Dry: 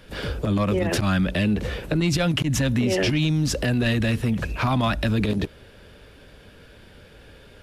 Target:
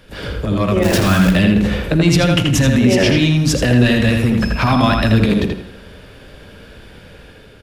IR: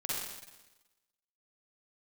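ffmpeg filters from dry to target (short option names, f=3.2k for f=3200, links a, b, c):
-filter_complex "[0:a]dynaudnorm=f=250:g=5:m=5dB,asplit=3[a][b][c];[a]afade=t=out:st=0.82:d=0.02[d];[b]acrusher=bits=5:dc=4:mix=0:aa=0.000001,afade=t=in:st=0.82:d=0.02,afade=t=out:st=1.34:d=0.02[e];[c]afade=t=in:st=1.34:d=0.02[f];[d][e][f]amix=inputs=3:normalize=0,asettb=1/sr,asplit=3[g][h][i];[g]atrim=end=4.414[j];[h]atrim=start=4.41:end=5.11,asetpts=PTS-STARTPTS,afade=t=in:d=0.004:c=qsin,afade=t=out:st=0.696:d=0.004:c=qsin,aeval=exprs='val(0)+0.0224*sin(2*PI*5200*n/s)':c=same[k];[i]atrim=start=5.106[l];[j][k]acrossfade=d=0.004:c1=hsin:c2=qsin[m];[m][l]acrossfade=d=0.004:c1=qsin:c2=hsin,asplit=2[n][o];[o]adelay=82,lowpass=f=3.8k:p=1,volume=-3dB,asplit=2[p][q];[q]adelay=82,lowpass=f=3.8k:p=1,volume=0.3,asplit=2[r][s];[s]adelay=82,lowpass=f=3.8k:p=1,volume=0.3,asplit=2[t][u];[u]adelay=82,lowpass=f=3.8k:p=1,volume=0.3[v];[n][p][r][t][v]amix=inputs=5:normalize=0,asplit=2[w][x];[1:a]atrim=start_sample=2205,asetrate=48510,aresample=44100[y];[x][y]afir=irnorm=-1:irlink=0,volume=-15dB[z];[w][z]amix=inputs=2:normalize=0,volume=1dB"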